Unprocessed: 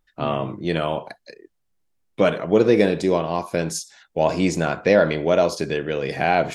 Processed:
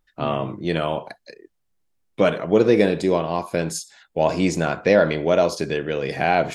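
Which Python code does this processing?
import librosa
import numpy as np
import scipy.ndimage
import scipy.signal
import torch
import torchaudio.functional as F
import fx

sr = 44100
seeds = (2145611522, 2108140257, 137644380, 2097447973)

y = fx.notch(x, sr, hz=5800.0, q=8.4, at=(2.78, 4.23))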